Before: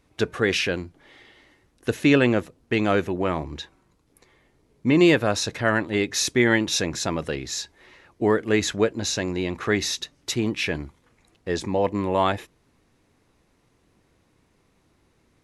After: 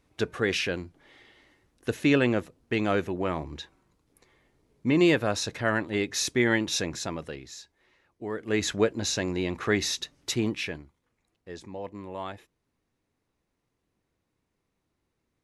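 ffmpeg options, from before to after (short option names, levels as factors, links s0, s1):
-af "volume=2.37,afade=t=out:st=6.79:d=0.79:silence=0.316228,afade=t=in:st=8.3:d=0.41:silence=0.251189,afade=t=out:st=10.44:d=0.4:silence=0.237137"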